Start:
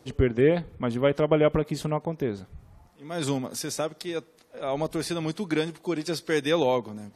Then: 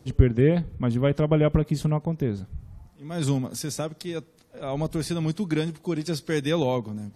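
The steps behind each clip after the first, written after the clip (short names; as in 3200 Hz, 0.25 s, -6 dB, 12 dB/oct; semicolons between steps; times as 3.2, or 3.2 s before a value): tone controls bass +12 dB, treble +3 dB; gain -3 dB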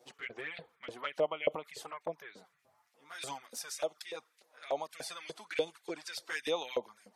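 LFO high-pass saw up 3.4 Hz 500–2600 Hz; envelope flanger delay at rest 8.8 ms, full sweep at -25 dBFS; gain -4.5 dB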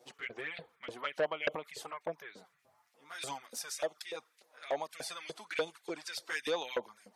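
core saturation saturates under 1600 Hz; gain +1 dB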